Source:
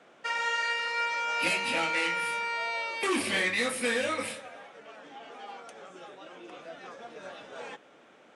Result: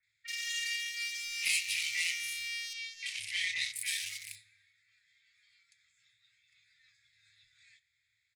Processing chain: Wiener smoothing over 15 samples; Chebyshev band-stop 110–2000 Hz, order 5; tone controls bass -6 dB, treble +10 dB; notches 50/100 Hz; in parallel at -3.5 dB: overloaded stage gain 23 dB; 2.7–3.73 on the sum: air absorption 81 m; bands offset in time lows, highs 30 ms, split 2200 Hz; on a send at -17 dB: reverb RT60 0.75 s, pre-delay 6 ms; on the sum: gain -3.5 dB

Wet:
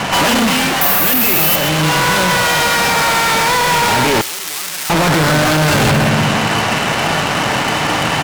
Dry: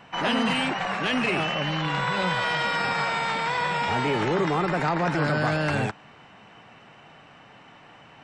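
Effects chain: HPF 48 Hz 24 dB/oct; reverb RT60 1.1 s, pre-delay 3 ms, DRR 12 dB; fuzz box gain 49 dB, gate -53 dBFS; 0.81–1.56 careless resampling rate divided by 3×, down none, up zero stuff; echo 0.128 s -11.5 dB; vocal rider within 4 dB 0.5 s; 4.21–4.9 pre-emphasis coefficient 0.97

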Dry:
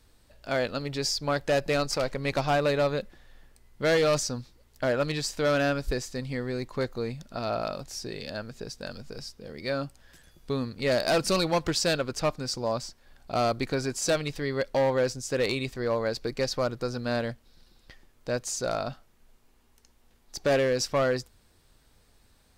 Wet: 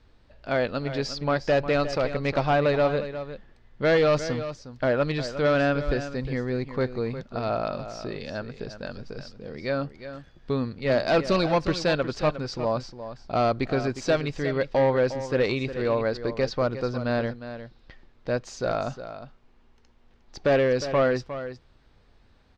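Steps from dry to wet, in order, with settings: air absorption 200 m; on a send: echo 0.358 s -11.5 dB; 10.79–11.29 on the sum: three-band expander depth 70%; gain +3.5 dB

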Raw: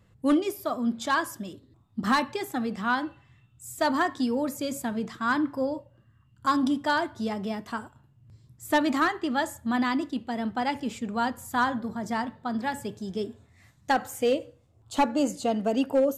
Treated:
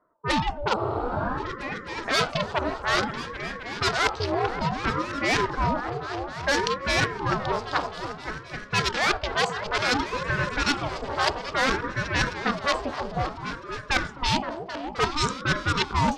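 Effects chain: Wiener smoothing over 25 samples; weighting filter ITU-R 468; overdrive pedal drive 23 dB, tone 3100 Hz, clips at -5.5 dBFS; low-pass opened by the level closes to 350 Hz, open at -14.5 dBFS; dynamic EQ 5200 Hz, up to +6 dB, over -40 dBFS, Q 1.6; reverse; compressor 10:1, threshold -23 dBFS, peak gain reduction 12 dB; reverse; low-pass opened by the level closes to 1100 Hz, open at -22.5 dBFS; repeats that get brighter 0.261 s, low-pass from 400 Hz, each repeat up 2 oct, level -6 dB; spectral freeze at 0.8, 0.58 s; ring modulator with a swept carrier 490 Hz, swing 70%, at 0.58 Hz; gain +5 dB

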